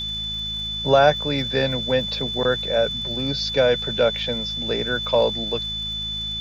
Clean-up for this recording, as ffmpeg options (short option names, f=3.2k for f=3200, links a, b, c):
-af "adeclick=t=4,bandreject=f=53.7:t=h:w=4,bandreject=f=107.4:t=h:w=4,bandreject=f=161.1:t=h:w=4,bandreject=f=214.8:t=h:w=4,bandreject=f=3.5k:w=30,afwtdn=0.0045"